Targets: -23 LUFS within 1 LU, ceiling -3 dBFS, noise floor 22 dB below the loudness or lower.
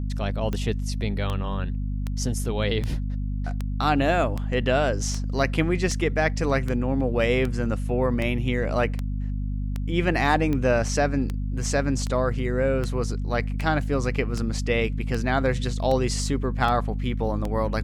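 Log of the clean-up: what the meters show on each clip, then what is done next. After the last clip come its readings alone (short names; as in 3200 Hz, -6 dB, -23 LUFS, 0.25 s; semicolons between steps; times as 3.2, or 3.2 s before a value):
clicks 23; hum 50 Hz; harmonics up to 250 Hz; hum level -25 dBFS; loudness -25.0 LUFS; peak -8.0 dBFS; loudness target -23.0 LUFS
-> de-click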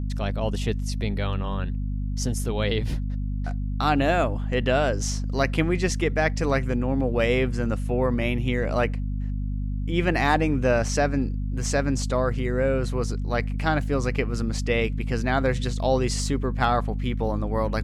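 clicks 0; hum 50 Hz; harmonics up to 250 Hz; hum level -25 dBFS
-> de-hum 50 Hz, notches 5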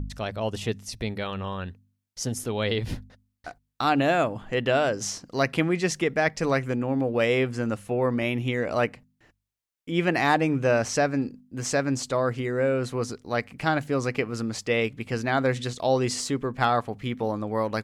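hum none; loudness -26.5 LUFS; peak -9.0 dBFS; loudness target -23.0 LUFS
-> gain +3.5 dB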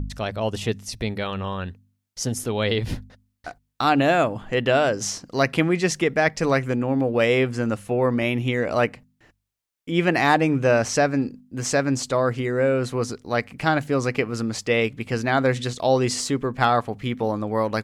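loudness -23.0 LUFS; peak -5.5 dBFS; noise floor -74 dBFS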